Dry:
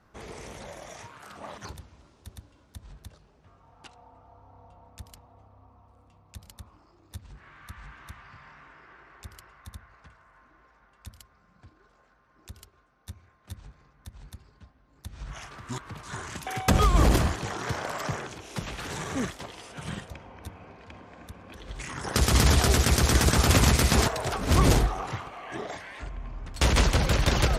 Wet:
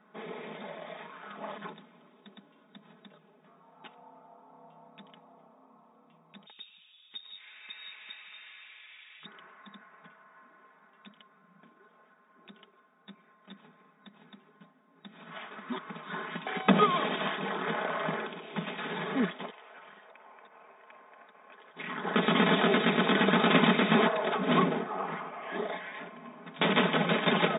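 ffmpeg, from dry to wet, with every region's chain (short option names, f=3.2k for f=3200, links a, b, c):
-filter_complex "[0:a]asettb=1/sr,asplit=3[a][b][c];[a]atrim=end=6.464[d];[b]atrim=start=6.46:end=9.26,asetpts=PTS-STARTPTS,afade=t=in:d=0.004:c=qsin,afade=t=out:st=2.796:d=0.004:c=qsin,lowpass=f=3.2k:t=q:w=0.5098,lowpass=f=3.2k:t=q:w=0.6013,lowpass=f=3.2k:t=q:w=0.9,lowpass=f=3.2k:t=q:w=2.563,afreqshift=-3800,acrusher=bits=5:mode=log:mix=0:aa=0.000001,acrossover=split=160[e][f];[e]adelay=190[g];[g][f]amix=inputs=2:normalize=0,atrim=end_sample=123480[h];[c]atrim=start=9.256[i];[d][h]acrossfade=d=0.004:c1=hsin:c2=qsin[j];[j][i]acrossfade=d=0.004:c1=qsin:c2=hsin,asettb=1/sr,asplit=3[k][l][m];[k]atrim=end=16.904[n];[l]atrim=start=16.9:end=17.38,asetpts=PTS-STARTPTS,afade=t=in:d=0.004:c=qsin,afade=t=out:st=0.476:d=0.004:c=qsin,aemphasis=mode=production:type=riaa,acrusher=bits=9:dc=4:mix=0:aa=0.000001,acompressor=threshold=-23dB:ratio=6:attack=3.2:release=140:knee=1:detection=peak[o];[m]atrim=start=17.376[p];[n][o]acrossfade=d=0.004:c1=hsin:c2=qsin[q];[q][p]acrossfade=d=0.004:c1=qsin:c2=hsin,asettb=1/sr,asplit=3[r][s][t];[r]atrim=end=19.504[u];[s]atrim=start=19.5:end=21.77,asetpts=PTS-STARTPTS,afade=t=in:d=0.004:c=qsin,afade=t=out:st=2.266:d=0.004:c=qsin,acompressor=threshold=-40dB:ratio=4:attack=3.2:release=140:knee=1:detection=peak,aeval=exprs='sgn(val(0))*max(abs(val(0))-0.00158,0)':c=same,highpass=640,lowpass=2.1k[v];[t]atrim=start=21.766[w];[u][v]acrossfade=d=0.004:c1=hsin:c2=qsin[x];[x][w]acrossfade=d=0.004:c1=qsin:c2=hsin,asettb=1/sr,asplit=3[y][z][aa];[y]atrim=end=24.634[ab];[z]atrim=start=24.63:end=25.42,asetpts=PTS-STARTPTS,afade=t=in:d=0.004:c=qsin,afade=t=out:st=0.786:d=0.004:c=qsin,lowpass=2.5k,acompressor=threshold=-28dB:ratio=2:attack=3.2:release=140:knee=1:detection=peak[ac];[aa]atrim=start=25.416[ad];[ab][ac]acrossfade=d=0.004:c1=hsin:c2=qsin[ae];[ae][ad]acrossfade=d=0.004:c1=qsin:c2=hsin,bandreject=f=2.8k:w=20,afftfilt=real='re*between(b*sr/4096,160,3800)':imag='im*between(b*sr/4096,160,3800)':win_size=4096:overlap=0.75,aecho=1:1:4.7:0.55"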